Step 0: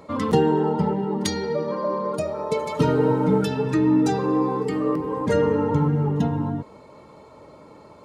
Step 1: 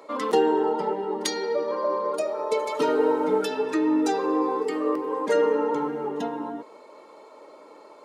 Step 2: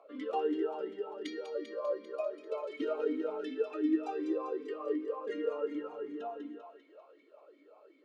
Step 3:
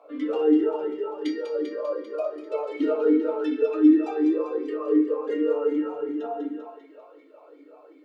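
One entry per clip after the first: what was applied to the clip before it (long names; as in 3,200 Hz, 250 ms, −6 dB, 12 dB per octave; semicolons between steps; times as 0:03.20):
high-pass filter 320 Hz 24 dB per octave
on a send: feedback echo with a high-pass in the loop 197 ms, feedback 65%, high-pass 690 Hz, level −6 dB; on the sum: formant filter swept between two vowels a-i 2.7 Hz; level −2 dB
feedback delay network reverb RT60 0.43 s, low-frequency decay 0.95×, high-frequency decay 0.4×, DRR −2 dB; level +3.5 dB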